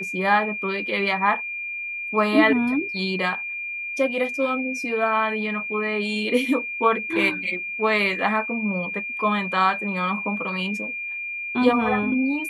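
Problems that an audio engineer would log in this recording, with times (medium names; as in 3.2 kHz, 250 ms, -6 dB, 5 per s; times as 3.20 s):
whine 2.4 kHz -28 dBFS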